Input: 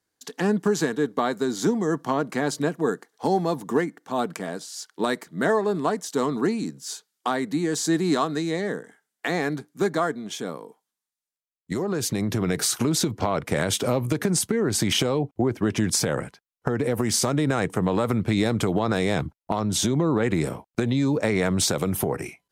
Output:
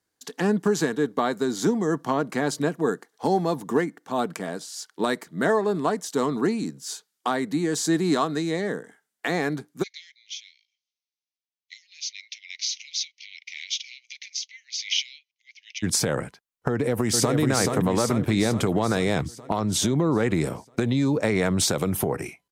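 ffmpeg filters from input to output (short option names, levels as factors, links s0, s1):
-filter_complex "[0:a]asplit=3[s0][s1][s2];[s0]afade=t=out:st=9.82:d=0.02[s3];[s1]asuperpass=centerf=3700:order=20:qfactor=0.85,afade=t=in:st=9.82:d=0.02,afade=t=out:st=15.82:d=0.02[s4];[s2]afade=t=in:st=15.82:d=0.02[s5];[s3][s4][s5]amix=inputs=3:normalize=0,asplit=2[s6][s7];[s7]afade=t=in:st=16.7:d=0.01,afade=t=out:st=17.38:d=0.01,aecho=0:1:430|860|1290|1720|2150|2580|3010|3440|3870:0.668344|0.401006|0.240604|0.144362|0.0866174|0.0519704|0.0311823|0.0187094|0.0112256[s8];[s6][s8]amix=inputs=2:normalize=0"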